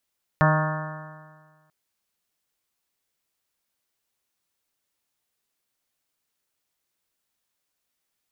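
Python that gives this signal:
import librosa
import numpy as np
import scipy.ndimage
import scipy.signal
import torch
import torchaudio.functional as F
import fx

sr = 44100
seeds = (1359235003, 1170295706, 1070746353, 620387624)

y = fx.additive_stiff(sr, length_s=1.29, hz=154.0, level_db=-16.5, upper_db=(-13, -20.0, -5.0, -10.0, -9.0, -6.5, -10, -10.0, -14.0, -9.5), decay_s=1.59, stiffness=0.00065)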